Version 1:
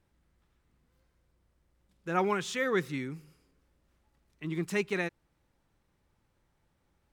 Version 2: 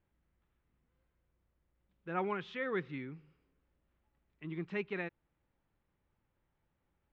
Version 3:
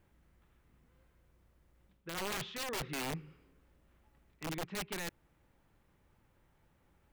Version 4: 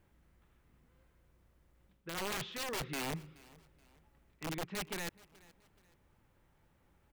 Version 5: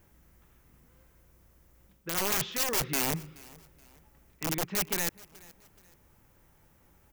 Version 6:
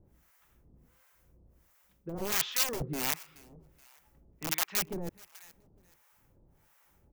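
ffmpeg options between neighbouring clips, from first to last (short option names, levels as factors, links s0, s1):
-af "lowpass=f=3300:w=0.5412,lowpass=f=3300:w=1.3066,volume=0.447"
-af "areverse,acompressor=threshold=0.00562:ratio=8,areverse,aeval=exprs='(mod(141*val(0)+1,2)-1)/141':c=same,volume=3.35"
-af "aecho=1:1:426|852:0.075|0.027"
-af "aexciter=amount=3.1:drive=1.5:freq=5300,volume=2.11"
-filter_complex "[0:a]acrossover=split=700[s0][s1];[s0]aeval=exprs='val(0)*(1-1/2+1/2*cos(2*PI*1.4*n/s))':c=same[s2];[s1]aeval=exprs='val(0)*(1-1/2-1/2*cos(2*PI*1.4*n/s))':c=same[s3];[s2][s3]amix=inputs=2:normalize=0,asplit=2[s4][s5];[s5]acrusher=bits=3:mix=0:aa=0.000001,volume=0.355[s6];[s4][s6]amix=inputs=2:normalize=0,volume=1.19"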